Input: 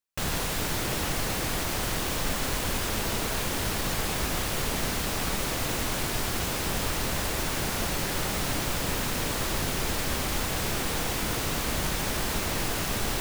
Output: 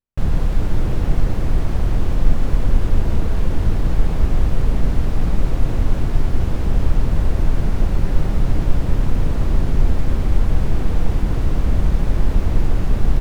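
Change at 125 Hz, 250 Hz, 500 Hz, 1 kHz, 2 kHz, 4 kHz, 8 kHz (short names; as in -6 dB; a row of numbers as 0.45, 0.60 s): +13.5, +7.5, +3.0, -1.5, -6.0, -10.5, -15.0 dB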